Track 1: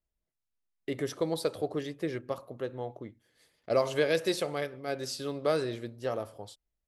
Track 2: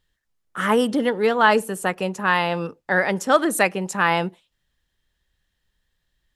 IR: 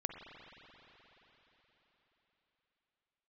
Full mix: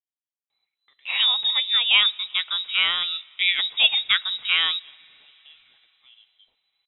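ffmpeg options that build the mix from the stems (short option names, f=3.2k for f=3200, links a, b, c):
-filter_complex "[0:a]acompressor=threshold=-34dB:ratio=6,highpass=f=850:t=q:w=4.9,volume=-18dB[a];[1:a]adelay=500,volume=-5.5dB,asplit=2[b][c];[c]volume=-21dB[d];[2:a]atrim=start_sample=2205[e];[d][e]afir=irnorm=-1:irlink=0[f];[a][b][f]amix=inputs=3:normalize=0,dynaudnorm=f=210:g=9:m=3.5dB,lowpass=f=3.4k:t=q:w=0.5098,lowpass=f=3.4k:t=q:w=0.6013,lowpass=f=3.4k:t=q:w=0.9,lowpass=f=3.4k:t=q:w=2.563,afreqshift=-4000"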